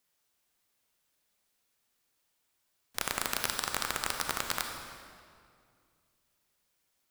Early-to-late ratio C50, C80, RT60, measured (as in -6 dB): 4.0 dB, 5.5 dB, 2.2 s